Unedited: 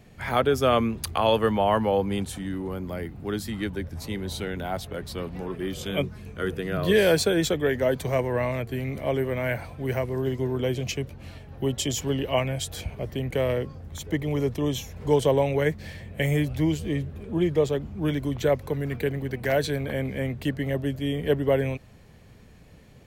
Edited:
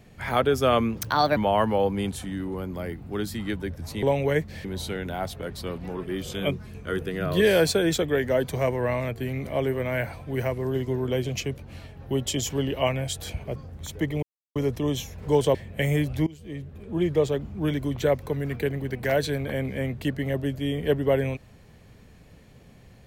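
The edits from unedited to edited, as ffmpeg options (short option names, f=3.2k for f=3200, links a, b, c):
-filter_complex "[0:a]asplit=9[a][b][c][d][e][f][g][h][i];[a]atrim=end=0.964[j];[b]atrim=start=0.96:end=1.5,asetpts=PTS-STARTPTS,asetrate=58653,aresample=44100,atrim=end_sample=17905,asetpts=PTS-STARTPTS[k];[c]atrim=start=1.496:end=4.162[l];[d]atrim=start=15.328:end=15.952[m];[e]atrim=start=4.158:end=13.072[n];[f]atrim=start=13.668:end=14.34,asetpts=PTS-STARTPTS,afade=t=out:st=0.668:d=0.004:c=hsin,apad=pad_dur=0.33[o];[g]atrim=start=14.34:end=15.332,asetpts=PTS-STARTPTS,afade=t=in:d=0.004:c=hsin[p];[h]atrim=start=15.948:end=16.67,asetpts=PTS-STARTPTS,afade=t=out:st=0.718:d=0.004:c=hsin:silence=0.0707946[q];[i]atrim=start=16.67,asetpts=PTS-STARTPTS,afade=t=in:d=0.85:silence=0.0707946[r];[j][k]acrossfade=d=0.004:c1=hsin:c2=hsin[s];[s][l]acrossfade=d=0.004:c1=hsin:c2=hsin[t];[t][m]acrossfade=d=0.004:c1=hsin:c2=hsin[u];[u][n]acrossfade=d=0.004:c1=hsin:c2=hsin[v];[o][p]concat=n=2:v=0:a=1[w];[v][w]acrossfade=d=0.004:c1=hsin:c2=hsin[x];[q][r]concat=n=2:v=0:a=1[y];[x][y]acrossfade=d=0.004:c1=hsin:c2=hsin"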